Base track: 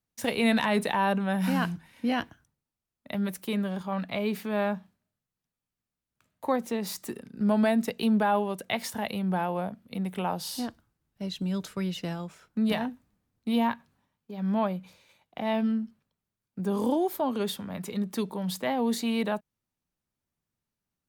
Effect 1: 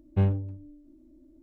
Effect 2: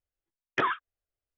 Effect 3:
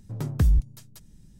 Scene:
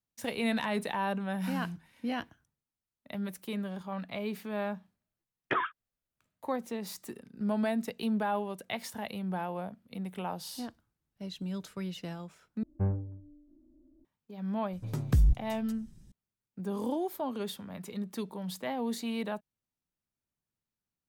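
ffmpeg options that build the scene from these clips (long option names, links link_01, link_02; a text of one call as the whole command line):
ffmpeg -i bed.wav -i cue0.wav -i cue1.wav -i cue2.wav -filter_complex "[0:a]volume=-6.5dB[link_01];[2:a]equalizer=frequency=6200:width_type=o:width=0.77:gain=-13[link_02];[1:a]lowpass=frequency=1600:width=0.5412,lowpass=frequency=1600:width=1.3066[link_03];[link_01]asplit=2[link_04][link_05];[link_04]atrim=end=12.634[link_06];[link_03]atrim=end=1.42,asetpts=PTS-STARTPTS,volume=-6.5dB[link_07];[link_05]atrim=start=14.046[link_08];[link_02]atrim=end=1.37,asetpts=PTS-STARTPTS,volume=-3dB,afade=type=in:duration=0.004:curve=hsin,afade=type=out:start_time=1.366:duration=0.004:curve=hsin,adelay=217413S[link_09];[3:a]atrim=end=1.39,asetpts=PTS-STARTPTS,volume=-3.5dB,afade=type=in:duration=0.004:curve=hsin,afade=type=out:start_time=1.386:duration=0.004:curve=hsin,adelay=14730[link_10];[link_06][link_07]acrossfade=duration=0.004:curve1=hsin:curve2=hsin[link_11];[link_11][link_08]acrossfade=duration=0.004:curve1=hsin:curve2=hsin[link_12];[link_12][link_09][link_10]amix=inputs=3:normalize=0" out.wav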